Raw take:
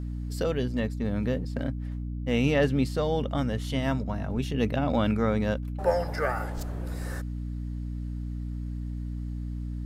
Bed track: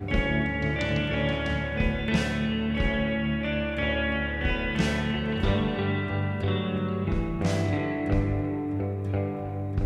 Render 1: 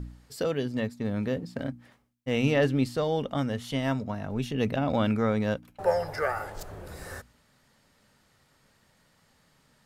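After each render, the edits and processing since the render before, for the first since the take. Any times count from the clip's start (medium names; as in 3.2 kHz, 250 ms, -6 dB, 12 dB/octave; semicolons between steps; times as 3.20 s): de-hum 60 Hz, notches 5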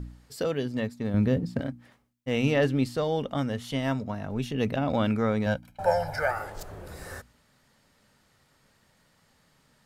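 1.14–1.61 s: bass shelf 260 Hz +11 dB; 5.46–6.31 s: comb 1.3 ms, depth 75%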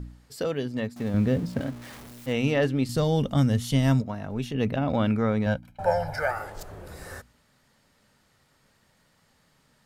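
0.96–2.33 s: jump at every zero crossing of -38.5 dBFS; 2.89–4.02 s: tone controls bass +12 dB, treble +10 dB; 4.54–6.14 s: tone controls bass +3 dB, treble -4 dB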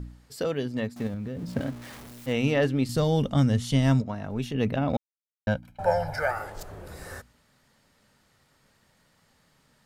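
1.07–1.55 s: compression 16:1, threshold -29 dBFS; 3.28–4.25 s: low-pass 9.6 kHz; 4.97–5.47 s: mute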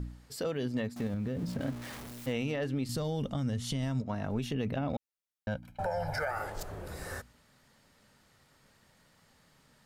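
compression 4:1, threshold -27 dBFS, peak gain reduction 9.5 dB; peak limiter -24 dBFS, peak gain reduction 7.5 dB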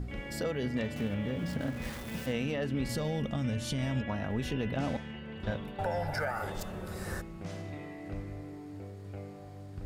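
add bed track -15 dB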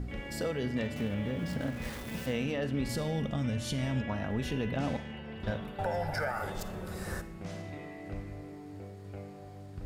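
reverse echo 669 ms -22.5 dB; Schroeder reverb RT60 0.54 s, DRR 14 dB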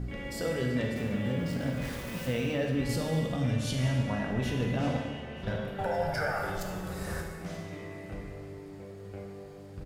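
delay 932 ms -23 dB; plate-style reverb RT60 1.5 s, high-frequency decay 0.95×, DRR 1.5 dB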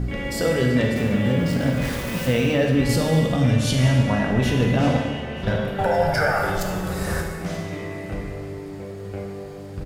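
trim +10.5 dB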